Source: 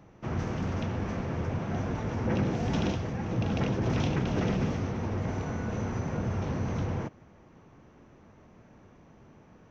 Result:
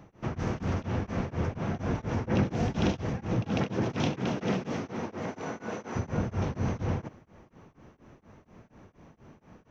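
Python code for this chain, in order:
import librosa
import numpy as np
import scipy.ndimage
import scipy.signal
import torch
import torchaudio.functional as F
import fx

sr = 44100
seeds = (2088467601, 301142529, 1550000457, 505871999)

y = fx.highpass(x, sr, hz=fx.line((3.41, 110.0), (5.95, 320.0)), slope=12, at=(3.41, 5.95), fade=0.02)
y = y * np.abs(np.cos(np.pi * 4.2 * np.arange(len(y)) / sr))
y = F.gain(torch.from_numpy(y), 3.5).numpy()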